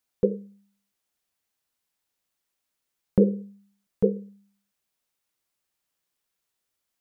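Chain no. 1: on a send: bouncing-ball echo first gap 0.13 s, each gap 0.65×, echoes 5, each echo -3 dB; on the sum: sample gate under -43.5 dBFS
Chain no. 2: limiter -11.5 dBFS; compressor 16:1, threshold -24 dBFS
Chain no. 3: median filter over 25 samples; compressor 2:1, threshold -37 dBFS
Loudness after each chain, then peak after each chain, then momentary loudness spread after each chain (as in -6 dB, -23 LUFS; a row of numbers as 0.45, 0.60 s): -24.0, -35.0, -38.0 LUFS; -8.0, -12.5, -16.5 dBFS; 18, 16, 19 LU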